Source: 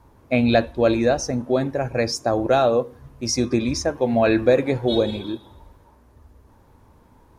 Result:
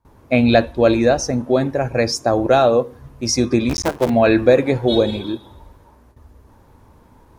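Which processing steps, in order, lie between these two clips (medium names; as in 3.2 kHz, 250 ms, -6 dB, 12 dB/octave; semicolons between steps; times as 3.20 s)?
3.69–4.10 s: cycle switcher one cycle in 3, muted; gate with hold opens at -44 dBFS; trim +4 dB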